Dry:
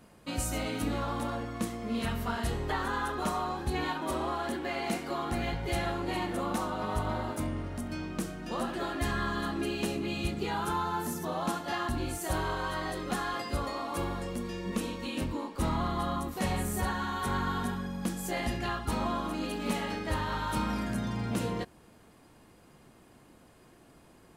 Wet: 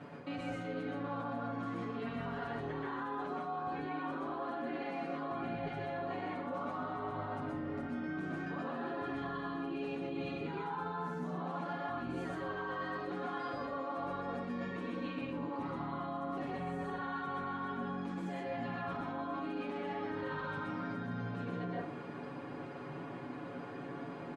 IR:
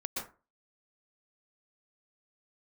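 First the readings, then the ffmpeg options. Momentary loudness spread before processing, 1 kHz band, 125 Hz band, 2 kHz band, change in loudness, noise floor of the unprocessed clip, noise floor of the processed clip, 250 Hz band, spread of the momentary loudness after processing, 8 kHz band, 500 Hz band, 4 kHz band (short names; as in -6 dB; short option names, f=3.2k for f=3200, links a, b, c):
4 LU, -5.5 dB, -8.5 dB, -6.0 dB, -6.5 dB, -58 dBFS, -45 dBFS, -5.5 dB, 3 LU, under -25 dB, -4.5 dB, -14.0 dB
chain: -filter_complex "[0:a]alimiter=level_in=8.5dB:limit=-24dB:level=0:latency=1,volume=-8.5dB,highpass=120,lowpass=2.4k,aecho=1:1:7:0.9[a];[1:a]atrim=start_sample=2205[b];[a][b]afir=irnorm=-1:irlink=0,areverse,acompressor=threshold=-46dB:ratio=8,areverse,volume=9.5dB"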